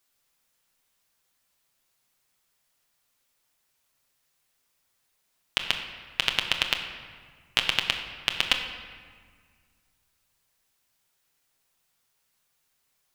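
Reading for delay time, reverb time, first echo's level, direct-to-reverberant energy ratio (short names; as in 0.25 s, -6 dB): none, 1.8 s, none, 2.5 dB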